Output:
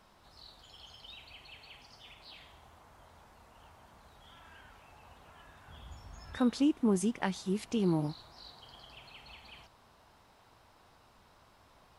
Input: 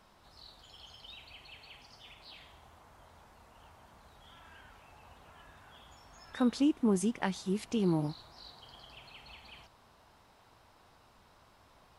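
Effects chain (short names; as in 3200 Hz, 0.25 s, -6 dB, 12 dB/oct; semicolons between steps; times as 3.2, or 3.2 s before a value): 5.68–6.38 bell 68 Hz +14 dB 2.6 oct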